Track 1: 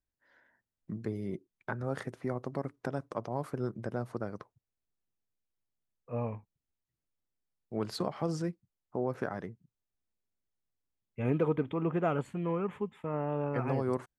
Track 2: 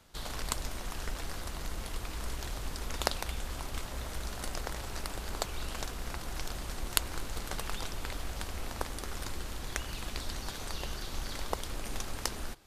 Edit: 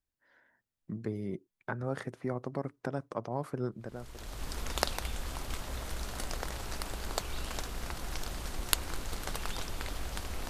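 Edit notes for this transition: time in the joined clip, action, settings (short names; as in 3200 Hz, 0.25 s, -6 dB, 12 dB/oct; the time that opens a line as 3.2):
track 1
4.08 switch to track 2 from 2.32 s, crossfade 0.86 s quadratic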